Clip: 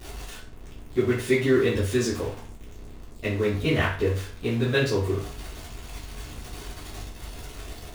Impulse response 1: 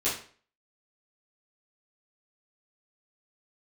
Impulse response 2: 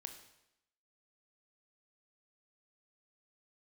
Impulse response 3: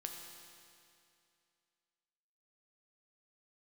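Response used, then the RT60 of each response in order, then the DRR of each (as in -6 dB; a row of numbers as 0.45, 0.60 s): 1; 0.45, 0.85, 2.5 s; -11.0, 5.5, 2.0 dB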